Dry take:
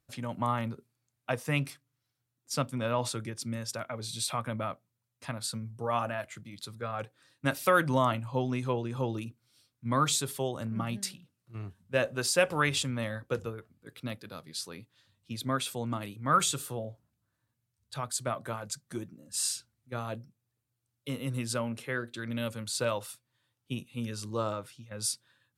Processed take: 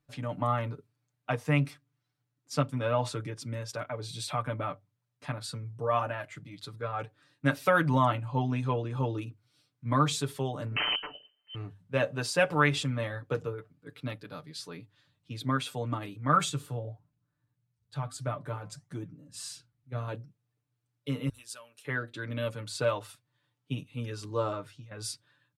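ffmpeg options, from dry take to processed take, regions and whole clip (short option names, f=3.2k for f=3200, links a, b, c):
-filter_complex "[0:a]asettb=1/sr,asplit=3[a][b][c];[a]atrim=end=10.764[d];[b]atrim=start=10.76:end=11.55,asetpts=PTS-STARTPTS,afade=t=in:d=0.004:c=qsin,afade=t=out:st=0.786:d=0.004:c=qsin,acontrast=31,aeval=exprs='(mod(12.6*val(0)+1,2)-1)/12.6':c=same,lowpass=f=2.7k:t=q:w=0.5098,lowpass=f=2.7k:t=q:w=0.6013,lowpass=f=2.7k:t=q:w=0.9,lowpass=f=2.7k:t=q:w=2.563,afreqshift=-3200[e];[c]atrim=start=11.546[f];[d][e]acrossfade=d=0.004:c1=hsin:c2=qsin[g];[g][f]acrossfade=d=0.004:c1=qsin:c2=hsin,asettb=1/sr,asplit=3[h][i][j];[h]atrim=end=16.494[k];[i]atrim=start=16.49:end=20.08,asetpts=PTS-STARTPTS,afade=t=in:d=0.004:c=qsin,afade=t=out:st=3.586:d=0.004:c=qsin,lowshelf=f=190:g=9,flanger=delay=5.1:depth=5.1:regen=-83:speed=1.6:shape=sinusoidal[l];[j]atrim=start=20.076[m];[k][l]acrossfade=d=0.004:c1=hsin:c2=qsin[n];[n][m]acrossfade=d=0.004:c1=qsin:c2=hsin,asettb=1/sr,asplit=3[o][p][q];[o]atrim=end=21.294[r];[p]atrim=start=21.29:end=21.85,asetpts=PTS-STARTPTS,afade=t=in:d=0.004:c=qsin,afade=t=out:st=0.556:d=0.004:c=qsin,aderivative,bandreject=f=2.1k:w=7.2[s];[q]atrim=start=21.846[t];[r][s]acrossfade=d=0.004:c1=hsin:c2=qsin[u];[u][t]acrossfade=d=0.004:c1=qsin:c2=hsin,lowpass=f=2.9k:p=1,bandreject=f=50:t=h:w=6,bandreject=f=100:t=h:w=6,aecho=1:1:6.8:0.73"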